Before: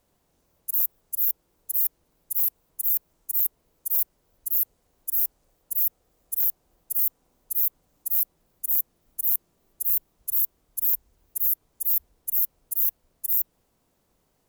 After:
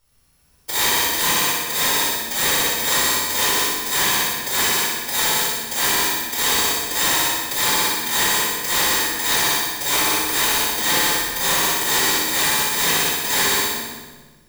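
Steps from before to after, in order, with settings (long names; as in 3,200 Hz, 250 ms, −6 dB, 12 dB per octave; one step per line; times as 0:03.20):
samples in bit-reversed order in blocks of 128 samples
on a send: echo machine with several playback heads 61 ms, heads all three, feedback 45%, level −6 dB
on the sum: rectangular room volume 820 cubic metres, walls mixed, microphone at 4.5 metres
slew-rate limiting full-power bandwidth 1,300 Hz
level −1 dB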